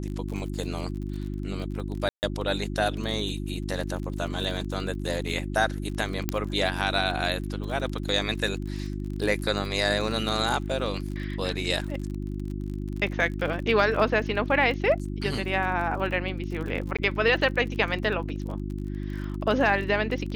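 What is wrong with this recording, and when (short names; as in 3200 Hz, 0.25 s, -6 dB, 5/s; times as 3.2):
crackle 37/s -34 dBFS
hum 50 Hz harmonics 7 -32 dBFS
2.09–2.23 gap 0.139 s
6.29 pop -9 dBFS
16.97–16.99 gap 16 ms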